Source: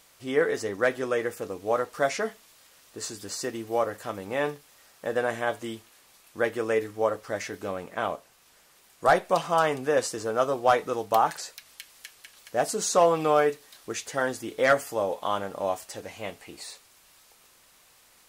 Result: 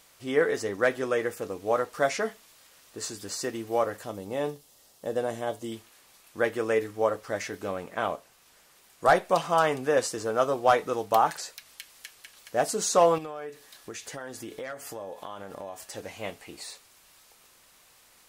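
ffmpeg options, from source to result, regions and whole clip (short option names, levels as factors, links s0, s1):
-filter_complex "[0:a]asettb=1/sr,asplit=3[s0][s1][s2];[s0]atrim=end=4.044[s3];[s1]atrim=start=4.04:end=5.72,asetpts=PTS-STARTPTS,afade=t=in:d=0.004:c=qsin,afade=t=out:st=1.676:d=0.004:c=qsin,equalizer=f=1600:t=o:w=1.4:g=-11.5,bandreject=f=2400:w=11[s4];[s2]atrim=start=5.716[s5];[s3][s4]acrossfade=d=0.004:c1=hsin:c2=qsin[s6];[s6][s5]acrossfade=d=0.004:c1=qsin:c2=hsin,asettb=1/sr,asplit=3[s7][s8][s9];[s7]atrim=end=13.184[s10];[s8]atrim=start=13.18:end=15.97,asetpts=PTS-STARTPTS,afade=t=in:d=0.004:c=qsin,afade=t=out:st=2.786:d=0.004:c=qsin,acompressor=threshold=0.0178:ratio=6:attack=3.2:release=140:knee=1:detection=peak,aeval=exprs='val(0)+0.000562*sin(2*PI*1700*n/s)':c=same[s11];[s9]atrim=start=15.966[s12];[s10][s11]acrossfade=d=0.004:c1=hsin:c2=qsin[s13];[s13][s12]acrossfade=d=0.004:c1=qsin:c2=hsin"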